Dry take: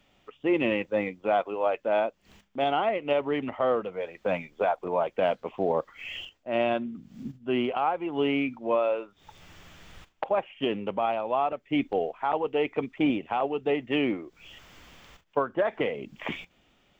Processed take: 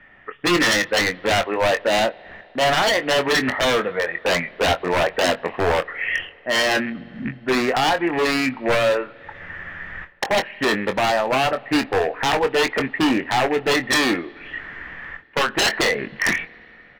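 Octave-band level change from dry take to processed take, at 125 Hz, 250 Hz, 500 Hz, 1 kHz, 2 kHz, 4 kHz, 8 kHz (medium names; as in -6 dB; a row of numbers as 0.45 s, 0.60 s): +9.5 dB, +5.5 dB, +5.5 dB, +7.0 dB, +15.5 dB, +16.5 dB, no reading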